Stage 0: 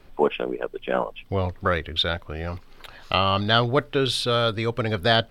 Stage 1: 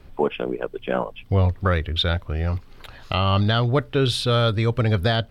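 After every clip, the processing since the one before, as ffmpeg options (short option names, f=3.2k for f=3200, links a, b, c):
-af "alimiter=limit=-10.5dB:level=0:latency=1:release=257,equalizer=f=75:w=0.48:g=10"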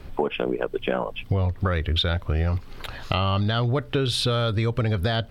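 -filter_complex "[0:a]asplit=2[a][b];[b]alimiter=limit=-16.5dB:level=0:latency=1,volume=0.5dB[c];[a][c]amix=inputs=2:normalize=0,acompressor=threshold=-20dB:ratio=6"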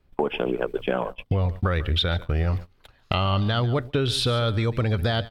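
-af "aecho=1:1:145:0.15,agate=range=-23dB:threshold=-30dB:ratio=16:detection=peak"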